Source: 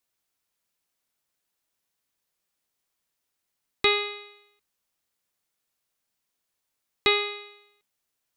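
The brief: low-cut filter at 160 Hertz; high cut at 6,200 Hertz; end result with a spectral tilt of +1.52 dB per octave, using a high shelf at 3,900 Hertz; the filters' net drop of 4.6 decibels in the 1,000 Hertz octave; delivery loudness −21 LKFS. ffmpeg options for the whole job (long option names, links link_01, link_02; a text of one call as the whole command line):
ffmpeg -i in.wav -af "highpass=160,lowpass=6200,equalizer=frequency=1000:width_type=o:gain=-5.5,highshelf=frequency=3900:gain=-7.5,volume=7.5dB" out.wav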